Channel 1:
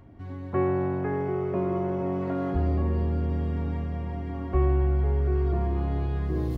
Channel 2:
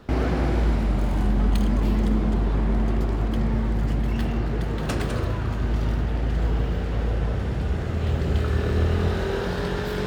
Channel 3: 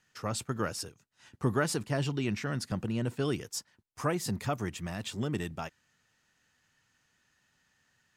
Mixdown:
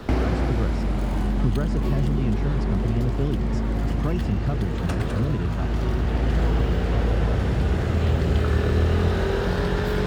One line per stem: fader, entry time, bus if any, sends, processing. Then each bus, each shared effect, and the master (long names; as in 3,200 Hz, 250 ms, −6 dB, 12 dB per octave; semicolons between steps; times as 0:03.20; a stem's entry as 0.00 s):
−12.5 dB, 1.30 s, no send, no processing
+2.5 dB, 0.00 s, no send, automatic ducking −7 dB, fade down 0.70 s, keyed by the third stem
−4.5 dB, 0.00 s, no send, low-pass filter 6,700 Hz; spectral tilt −4 dB per octave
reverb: not used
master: multiband upward and downward compressor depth 70%